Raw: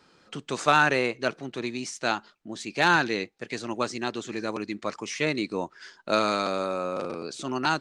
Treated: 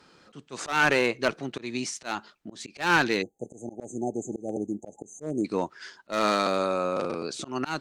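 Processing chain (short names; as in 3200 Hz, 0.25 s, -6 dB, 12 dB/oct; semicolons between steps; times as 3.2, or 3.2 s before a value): spectral delete 3.22–5.45, 860–6100 Hz; one-sided clip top -20 dBFS, bottom -11.5 dBFS; auto swell 0.178 s; gain +2.5 dB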